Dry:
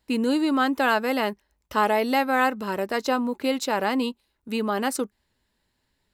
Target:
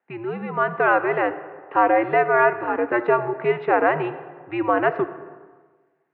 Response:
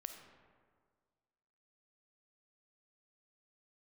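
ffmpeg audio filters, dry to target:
-filter_complex "[0:a]highpass=f=420:t=q:w=0.5412,highpass=f=420:t=q:w=1.307,lowpass=f=2.3k:t=q:w=0.5176,lowpass=f=2.3k:t=q:w=0.7071,lowpass=f=2.3k:t=q:w=1.932,afreqshift=-110,asplit=2[a][b];[1:a]atrim=start_sample=2205[c];[b][c]afir=irnorm=-1:irlink=0,volume=3dB[d];[a][d]amix=inputs=2:normalize=0,dynaudnorm=f=110:g=13:m=11.5dB,volume=-4.5dB"

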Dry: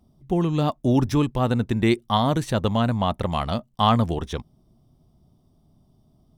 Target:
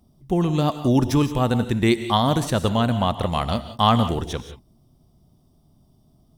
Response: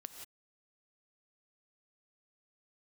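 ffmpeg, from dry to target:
-filter_complex "[0:a]asplit=2[a][b];[1:a]atrim=start_sample=2205,highshelf=f=4.1k:g=10[c];[b][c]afir=irnorm=-1:irlink=0,volume=4dB[d];[a][d]amix=inputs=2:normalize=0,volume=-4dB"

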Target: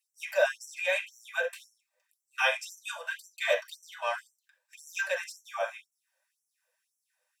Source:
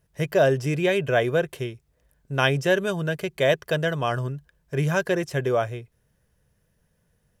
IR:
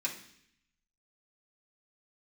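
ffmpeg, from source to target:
-filter_complex "[0:a]asettb=1/sr,asplit=3[a][b][c];[a]atrim=end=3.034[d];[b]atrim=start=3.03:end=4.27,asetpts=PTS-STARTPTS,afade=t=in:d=0.004:c=qsin,afade=t=out:st=1.236:d=0.004:c=qsin,aeval=exprs='if(lt(val(0),0),0.708*val(0),val(0))':c=same[e];[c]atrim=start=4.266[f];[d][e]acrossfade=d=0.004:c1=hsin:c2=qsin[g];[g][f]acrossfade=d=0.004:c1=qsin:c2=hsin[h];[1:a]atrim=start_sample=2205,atrim=end_sample=3969[i];[h][i]afir=irnorm=-1:irlink=0,afftfilt=real='re*gte(b*sr/1024,460*pow(5600/460,0.5+0.5*sin(2*PI*1.9*pts/sr)))':imag='im*gte(b*sr/1024,460*pow(5600/460,0.5+0.5*sin(2*PI*1.9*pts/sr)))':win_size=1024:overlap=0.75,volume=-5dB"

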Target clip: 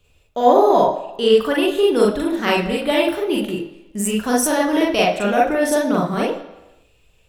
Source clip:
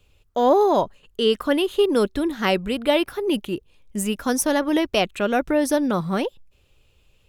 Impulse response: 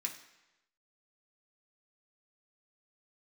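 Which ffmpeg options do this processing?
-filter_complex "[0:a]asplit=2[a][b];[b]equalizer=f=640:w=1.4:g=10[c];[1:a]atrim=start_sample=2205,adelay=41[d];[c][d]afir=irnorm=-1:irlink=0,volume=2dB[e];[a][e]amix=inputs=2:normalize=0,volume=-1dB"

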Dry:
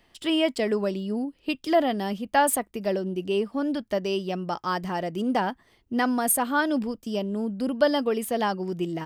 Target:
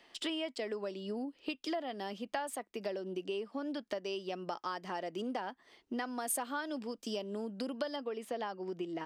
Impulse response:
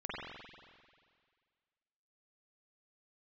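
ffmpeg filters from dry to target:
-filter_complex "[0:a]acrossover=split=240 7200:gain=0.1 1 0.158[a][b][c];[a][b][c]amix=inputs=3:normalize=0,acompressor=threshold=-37dB:ratio=6,asetnsamples=n=441:p=0,asendcmd='6.19 highshelf g 10;7.96 highshelf g -3.5',highshelf=f=4.6k:g=5,volume=1dB"

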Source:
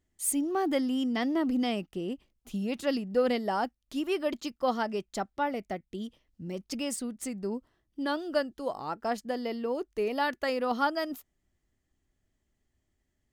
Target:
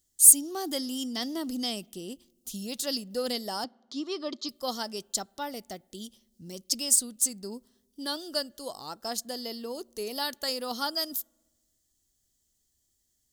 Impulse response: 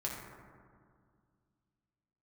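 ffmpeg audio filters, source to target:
-filter_complex "[0:a]asettb=1/sr,asplit=3[a][b][c];[a]atrim=end=3.644[d];[b]atrim=start=3.64:end=4.49,asetpts=PTS-STARTPTS,afade=t=in:d=0.004:c=qsin,afade=t=out:st=0.846:d=0.004:c=qsin,highpass=130,equalizer=f=290:t=q:w=4:g=4,equalizer=f=1.2k:t=q:w=4:g=9,equalizer=f=1.6k:t=q:w=4:g=-6,equalizer=f=2.8k:t=q:w=4:g=-6,lowpass=f=4.9k:w=0.5412,lowpass=f=4.9k:w=1.3066[e];[c]atrim=start=4.486[f];[d][e]acrossfade=d=0.004:c1=hsin:c2=qsin[g];[g][f]acrossfade=d=0.004:c1=qsin:c2=hsin,asplit=2[h][i];[1:a]atrim=start_sample=2205,asetrate=79380,aresample=44100[j];[i][j]afir=irnorm=-1:irlink=0,volume=-24dB[k];[h][k]amix=inputs=2:normalize=0,aexciter=amount=10.1:drive=3.4:freq=3.5k,volume=-6dB"

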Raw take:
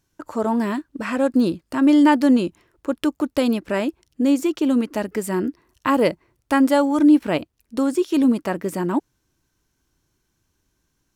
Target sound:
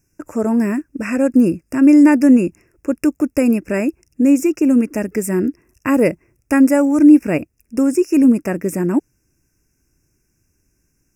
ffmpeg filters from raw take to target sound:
-af "asuperstop=centerf=3700:order=20:qfactor=1.7,equalizer=f=980:t=o:w=1.2:g=-12,volume=6.5dB"

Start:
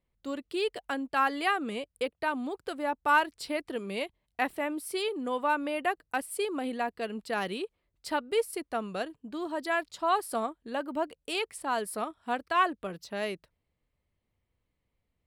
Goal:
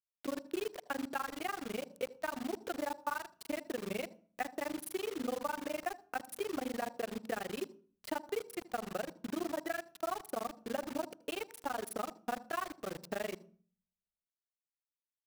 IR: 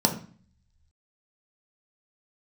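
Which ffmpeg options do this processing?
-filter_complex "[0:a]highpass=f=160:p=1,lowshelf=f=220:g=-5.5,bandreject=f=1k:w=8.3,tremolo=f=24:d=1,acompressor=threshold=-42dB:ratio=10,equalizer=f=6k:t=o:w=1.7:g=-14.5,acrusher=bits=8:mix=0:aa=0.000001,asplit=2[a][b];[1:a]atrim=start_sample=2205,adelay=77[c];[b][c]afir=irnorm=-1:irlink=0,volume=-32dB[d];[a][d]amix=inputs=2:normalize=0,volume=9dB"

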